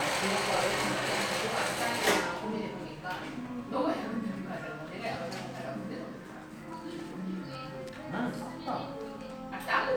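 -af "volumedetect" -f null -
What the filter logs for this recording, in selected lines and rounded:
mean_volume: -33.9 dB
max_volume: -11.7 dB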